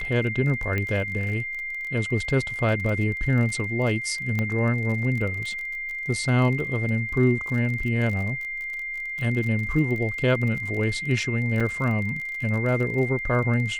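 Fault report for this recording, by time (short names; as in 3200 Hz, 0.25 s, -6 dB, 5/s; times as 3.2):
crackle 33/s -31 dBFS
tone 2100 Hz -29 dBFS
0.78 pop -15 dBFS
4.39 pop -14 dBFS
11.6–11.61 gap 5 ms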